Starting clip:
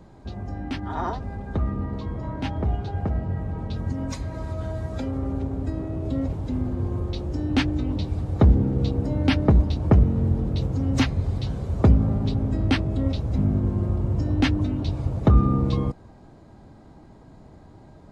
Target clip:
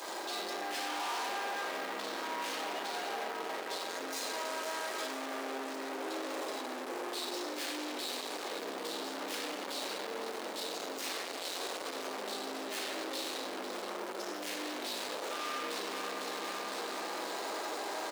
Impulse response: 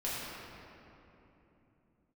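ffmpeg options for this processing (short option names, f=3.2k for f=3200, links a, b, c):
-filter_complex "[0:a]asplit=2[a][b];[b]highpass=f=720:p=1,volume=33dB,asoftclip=type=tanh:threshold=-5.5dB[c];[a][c]amix=inputs=2:normalize=0,lowpass=f=5.2k:p=1,volume=-6dB,aecho=1:1:503|1006|1509|2012|2515|3018:0.237|0.133|0.0744|0.0416|0.0233|0.0131,crystalizer=i=5:c=0,areverse,acompressor=threshold=-23dB:ratio=6,areverse[d];[1:a]atrim=start_sample=2205,asetrate=74970,aresample=44100[e];[d][e]afir=irnorm=-1:irlink=0,aeval=exprs='(tanh(39.8*val(0)+0.75)-tanh(0.75))/39.8':c=same,acrusher=bits=6:mix=0:aa=0.5,highpass=f=350:w=0.5412,highpass=f=350:w=1.3066,volume=-2.5dB"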